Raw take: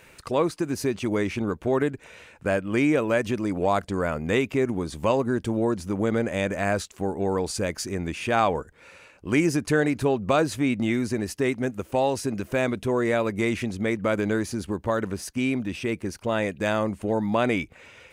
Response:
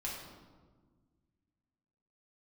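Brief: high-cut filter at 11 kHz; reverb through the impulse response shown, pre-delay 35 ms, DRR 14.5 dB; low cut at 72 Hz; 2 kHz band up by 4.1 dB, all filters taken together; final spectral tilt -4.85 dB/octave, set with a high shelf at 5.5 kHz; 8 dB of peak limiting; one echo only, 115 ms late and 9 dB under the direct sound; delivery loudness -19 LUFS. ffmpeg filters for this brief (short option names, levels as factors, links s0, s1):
-filter_complex "[0:a]highpass=72,lowpass=11000,equalizer=f=2000:t=o:g=4,highshelf=f=5500:g=8,alimiter=limit=0.224:level=0:latency=1,aecho=1:1:115:0.355,asplit=2[s0][s1];[1:a]atrim=start_sample=2205,adelay=35[s2];[s1][s2]afir=irnorm=-1:irlink=0,volume=0.158[s3];[s0][s3]amix=inputs=2:normalize=0,volume=2.11"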